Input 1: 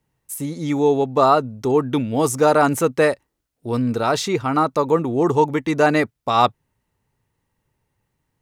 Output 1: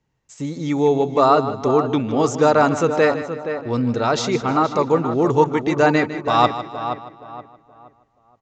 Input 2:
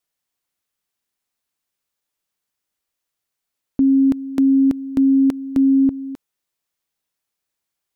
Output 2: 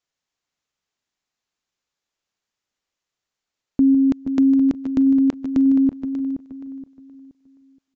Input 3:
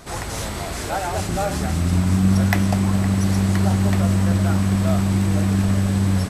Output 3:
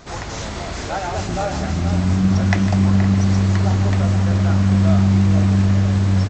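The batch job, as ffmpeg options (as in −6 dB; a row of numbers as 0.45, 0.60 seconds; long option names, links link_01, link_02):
-filter_complex "[0:a]asplit=2[link_01][link_02];[link_02]aecho=0:1:154|308|462:0.224|0.0784|0.0274[link_03];[link_01][link_03]amix=inputs=2:normalize=0,aresample=16000,aresample=44100,asplit=2[link_04][link_05];[link_05]adelay=473,lowpass=frequency=2300:poles=1,volume=-9dB,asplit=2[link_06][link_07];[link_07]adelay=473,lowpass=frequency=2300:poles=1,volume=0.32,asplit=2[link_08][link_09];[link_09]adelay=473,lowpass=frequency=2300:poles=1,volume=0.32,asplit=2[link_10][link_11];[link_11]adelay=473,lowpass=frequency=2300:poles=1,volume=0.32[link_12];[link_06][link_08][link_10][link_12]amix=inputs=4:normalize=0[link_13];[link_04][link_13]amix=inputs=2:normalize=0"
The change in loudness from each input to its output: +0.5, −1.5, +2.5 LU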